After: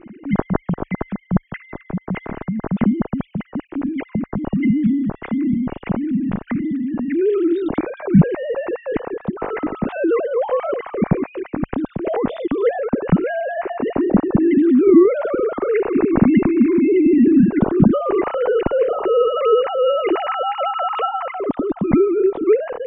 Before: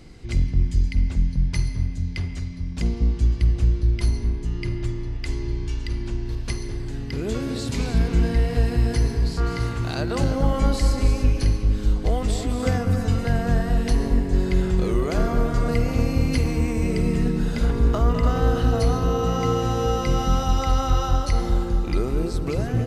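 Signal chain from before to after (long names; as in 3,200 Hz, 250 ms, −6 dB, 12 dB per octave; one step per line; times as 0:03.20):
three sine waves on the formant tracks
spectral tilt −3.5 dB per octave
level −2.5 dB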